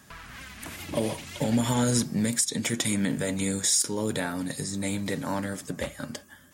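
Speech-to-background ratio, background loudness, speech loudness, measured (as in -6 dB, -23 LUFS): 15.5 dB, -43.0 LUFS, -27.5 LUFS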